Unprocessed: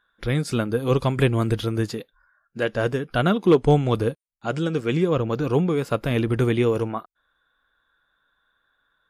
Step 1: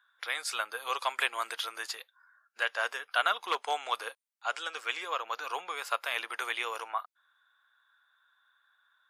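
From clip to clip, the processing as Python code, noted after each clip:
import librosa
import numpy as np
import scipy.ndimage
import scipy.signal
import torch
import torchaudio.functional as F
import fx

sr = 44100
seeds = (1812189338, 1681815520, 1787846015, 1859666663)

y = scipy.signal.sosfilt(scipy.signal.butter(4, 860.0, 'highpass', fs=sr, output='sos'), x)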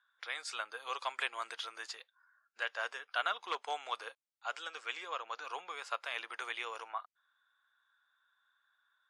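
y = scipy.signal.sosfilt(scipy.signal.butter(4, 8400.0, 'lowpass', fs=sr, output='sos'), x)
y = y * librosa.db_to_amplitude(-6.5)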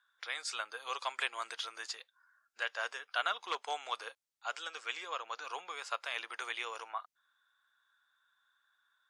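y = fx.peak_eq(x, sr, hz=6400.0, db=4.5, octaves=1.5)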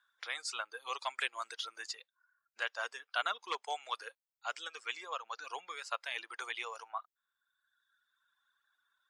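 y = fx.dereverb_blind(x, sr, rt60_s=1.4)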